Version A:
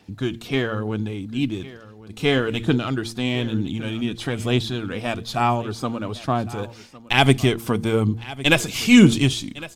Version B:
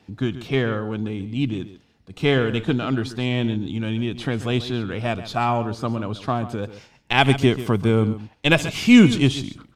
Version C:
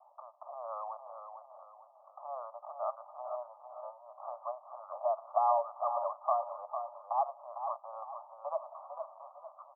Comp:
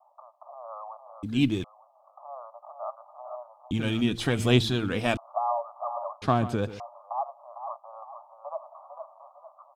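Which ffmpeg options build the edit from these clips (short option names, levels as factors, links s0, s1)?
-filter_complex "[0:a]asplit=2[s0][s1];[2:a]asplit=4[s2][s3][s4][s5];[s2]atrim=end=1.232[s6];[s0]atrim=start=1.228:end=1.642[s7];[s3]atrim=start=1.638:end=3.712[s8];[s1]atrim=start=3.708:end=5.172[s9];[s4]atrim=start=5.168:end=6.222[s10];[1:a]atrim=start=6.218:end=6.802[s11];[s5]atrim=start=6.798[s12];[s6][s7]acrossfade=d=0.004:c1=hsin:c2=hsin[s13];[s13][s8]acrossfade=d=0.004:c1=hsin:c2=hsin[s14];[s14][s9]acrossfade=d=0.004:c1=hsin:c2=hsin[s15];[s15][s10]acrossfade=d=0.004:c1=hsin:c2=hsin[s16];[s16][s11]acrossfade=d=0.004:c1=hsin:c2=hsin[s17];[s17][s12]acrossfade=d=0.004:c1=hsin:c2=hsin"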